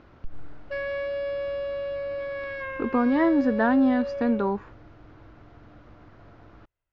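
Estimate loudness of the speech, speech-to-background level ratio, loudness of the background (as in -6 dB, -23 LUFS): -23.5 LUFS, 8.5 dB, -32.0 LUFS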